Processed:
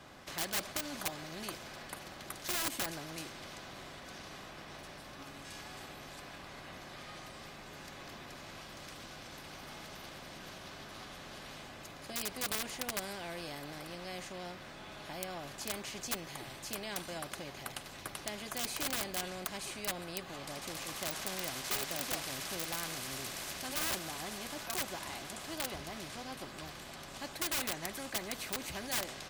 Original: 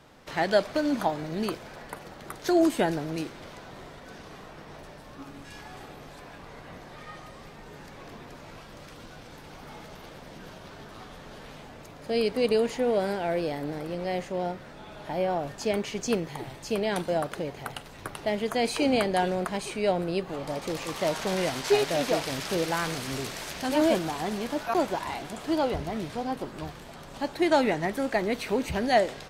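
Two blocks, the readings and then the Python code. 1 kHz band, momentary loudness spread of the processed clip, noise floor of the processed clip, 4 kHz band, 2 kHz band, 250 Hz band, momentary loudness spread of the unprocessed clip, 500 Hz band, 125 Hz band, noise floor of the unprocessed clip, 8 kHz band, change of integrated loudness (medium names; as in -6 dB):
-12.5 dB, 13 LU, -50 dBFS, -3.5 dB, -6.5 dB, -16.5 dB, 21 LU, -18.0 dB, -12.0 dB, -46 dBFS, +1.5 dB, -11.5 dB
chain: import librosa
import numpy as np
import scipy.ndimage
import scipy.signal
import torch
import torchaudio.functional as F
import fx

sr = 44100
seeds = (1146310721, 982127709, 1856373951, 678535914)

y = (np.mod(10.0 ** (17.0 / 20.0) * x + 1.0, 2.0) - 1.0) / 10.0 ** (17.0 / 20.0)
y = fx.notch_comb(y, sr, f0_hz=460.0)
y = fx.spectral_comp(y, sr, ratio=2.0)
y = F.gain(torch.from_numpy(y), 3.0).numpy()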